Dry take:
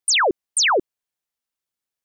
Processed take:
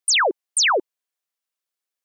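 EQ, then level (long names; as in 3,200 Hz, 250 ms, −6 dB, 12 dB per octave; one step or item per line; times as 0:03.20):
high-pass filter 390 Hz
notch filter 880 Hz, Q 14
0.0 dB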